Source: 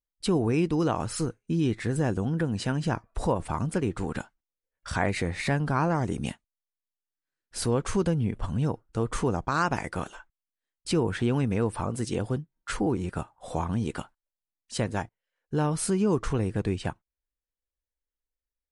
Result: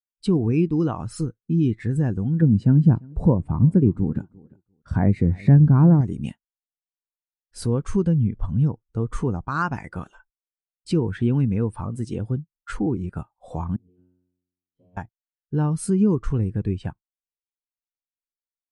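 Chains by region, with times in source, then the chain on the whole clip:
0:02.42–0:06.01: high-pass filter 93 Hz 6 dB per octave + tilt shelving filter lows +8 dB, about 720 Hz + repeating echo 347 ms, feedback 24%, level −18 dB
0:13.76–0:14.97: head-to-tape spacing loss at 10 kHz 43 dB + flanger swept by the level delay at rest 8.3 ms, full sweep at −28.5 dBFS + tuned comb filter 90 Hz, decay 1.4 s, mix 100%
whole clip: dynamic equaliser 550 Hz, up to −5 dB, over −36 dBFS, Q 0.88; every bin expanded away from the loudest bin 1.5 to 1; level +7.5 dB

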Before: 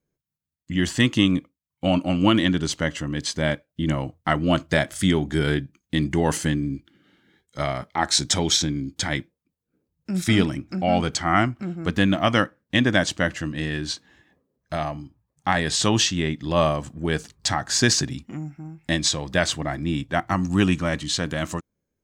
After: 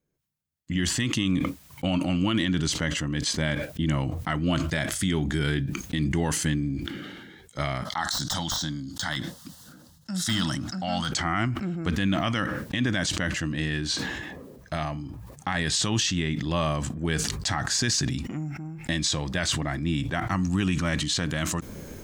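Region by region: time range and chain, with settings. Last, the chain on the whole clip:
0:07.85–0:11.12: meter weighting curve D + de-essing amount 45% + phaser with its sweep stopped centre 990 Hz, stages 4
whole clip: dynamic equaliser 560 Hz, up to −7 dB, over −34 dBFS, Q 0.72; brickwall limiter −15.5 dBFS; level that may fall only so fast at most 33 dB per second

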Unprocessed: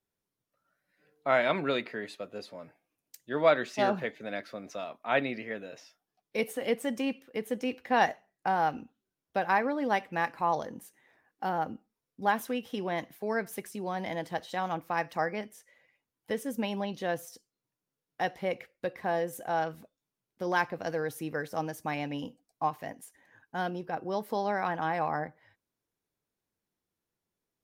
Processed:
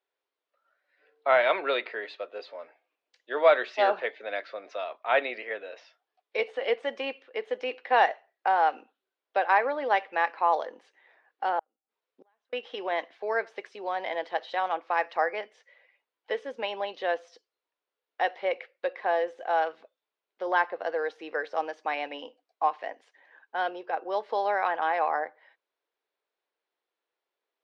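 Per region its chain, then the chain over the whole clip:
0:11.59–0:12.53: downward compressor, threshold −35 dBFS + gate with flip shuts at −36 dBFS, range −36 dB
0:20.42–0:20.99: high-shelf EQ 4,100 Hz −8 dB + notch filter 2,400 Hz, Q 8
whole clip: high-pass filter 430 Hz 24 dB per octave; de-essing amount 95%; low-pass filter 4,100 Hz 24 dB per octave; level +4.5 dB

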